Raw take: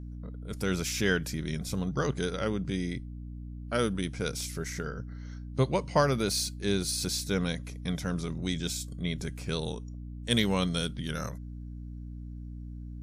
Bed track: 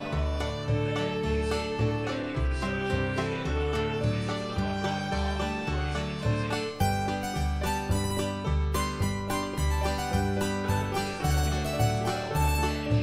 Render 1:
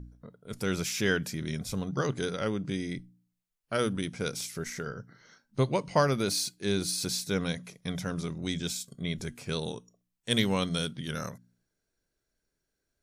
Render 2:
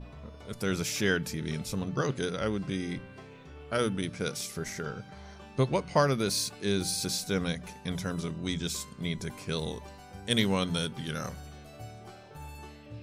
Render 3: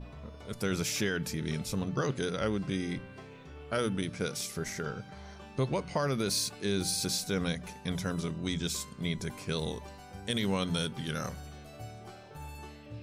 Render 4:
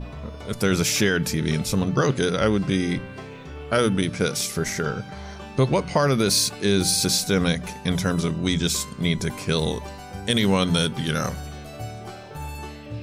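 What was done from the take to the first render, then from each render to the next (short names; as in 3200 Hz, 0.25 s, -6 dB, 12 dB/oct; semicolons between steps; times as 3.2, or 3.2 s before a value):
de-hum 60 Hz, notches 5
add bed track -19 dB
limiter -20 dBFS, peak gain reduction 9 dB
gain +10.5 dB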